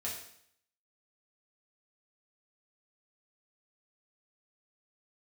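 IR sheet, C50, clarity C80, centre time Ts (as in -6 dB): 4.5 dB, 7.5 dB, 38 ms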